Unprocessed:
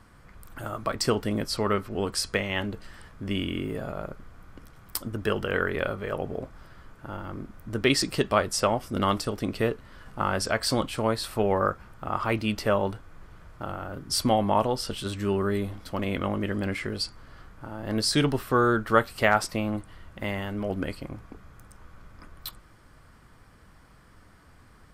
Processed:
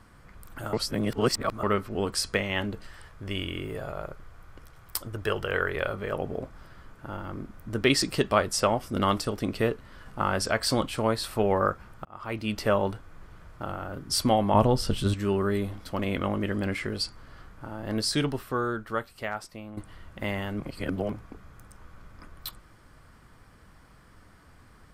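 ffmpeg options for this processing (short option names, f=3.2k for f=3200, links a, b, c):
-filter_complex "[0:a]asettb=1/sr,asplit=3[a][b][c];[a]atrim=end=2.864[d];[b]atrim=start=2.86:end=5.94,asetpts=PTS-STARTPTS,afade=t=in:d=0.004:c=qsin,afade=t=out:st=3.076:d=0.004:c=qsin,equalizer=f=230:t=o:w=0.77:g=-10.5[e];[c]atrim=start=5.936[f];[d][e]acrossfade=d=0.004:c1=hsin:c2=qsin[g];[g][f]acrossfade=d=0.004:c1=qsin:c2=hsin,asettb=1/sr,asplit=3[h][i][j];[h]atrim=end=14.544[k];[i]atrim=start=14.54:end=15.14,asetpts=PTS-STARTPTS,afade=t=in:d=0.004:c=qsin,afade=t=out:st=0.596:d=0.004:c=qsin,lowshelf=f=270:g=11.5[l];[j]atrim=start=15.136[m];[k][l]acrossfade=d=0.004:c1=hsin:c2=qsin[n];[n][m]acrossfade=d=0.004:c1=qsin:c2=hsin,asplit=7[o][p][q][r][s][t][u];[o]atrim=end=0.732[v];[p]atrim=start=0.728:end=1.632,asetpts=PTS-STARTPTS,areverse[w];[q]atrim=start=1.628:end=12.05,asetpts=PTS-STARTPTS,afade=t=out:st=10.418:d=0.004:c=hsin[x];[r]atrim=start=12.05:end=19.77,asetpts=PTS-STARTPTS,afade=t=in:d=0.6,afade=t=out:st=5.67:d=2.05:c=qua:silence=0.211349[y];[s]atrim=start=19.77:end=20.602,asetpts=PTS-STARTPTS,afade=t=in:d=0.004:c=hsin:silence=0.211349[z];[t]atrim=start=20.598:end=21.122,asetpts=PTS-STARTPTS,areverse[aa];[u]atrim=start=21.118[ab];[v][w]acrossfade=d=0.004:c1=hsin:c2=hsin[ac];[x][y][z]concat=n=3:v=0:a=1[ad];[ac][ad]acrossfade=d=0.004:c1=hsin:c2=hsin[ae];[ae][aa]acrossfade=d=0.004:c1=hsin:c2=hsin[af];[af][ab]acrossfade=d=0.004:c1=hsin:c2=hsin"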